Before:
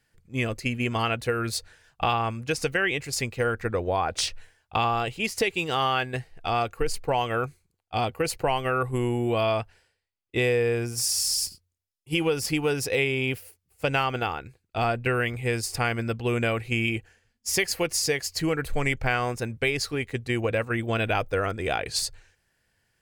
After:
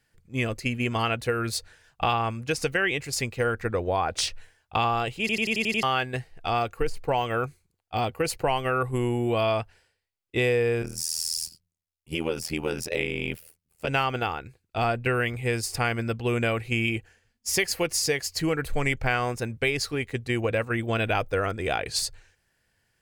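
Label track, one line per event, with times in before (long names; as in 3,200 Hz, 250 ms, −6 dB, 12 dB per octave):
5.200000	5.200000	stutter in place 0.09 s, 7 plays
6.580000	8.160000	de-essing amount 90%
10.820000	13.880000	amplitude modulation modulator 81 Hz, depth 100%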